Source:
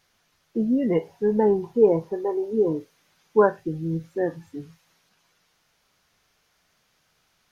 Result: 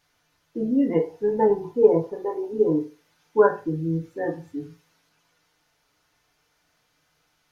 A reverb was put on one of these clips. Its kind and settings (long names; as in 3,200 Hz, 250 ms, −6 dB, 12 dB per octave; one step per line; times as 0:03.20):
feedback delay network reverb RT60 0.34 s, low-frequency decay 0.85×, high-frequency decay 0.5×, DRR 0 dB
level −3.5 dB